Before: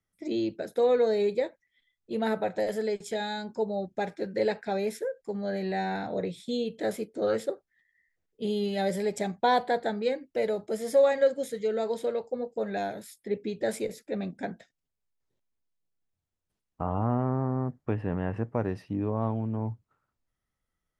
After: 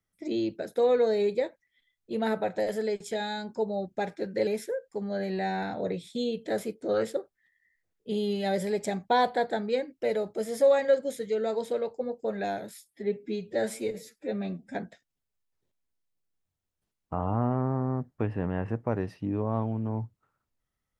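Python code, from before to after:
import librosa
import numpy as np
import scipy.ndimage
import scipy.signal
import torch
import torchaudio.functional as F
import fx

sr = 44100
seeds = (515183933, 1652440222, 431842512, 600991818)

y = fx.edit(x, sr, fx.cut(start_s=4.47, length_s=0.33),
    fx.stretch_span(start_s=13.13, length_s=1.3, factor=1.5), tone=tone)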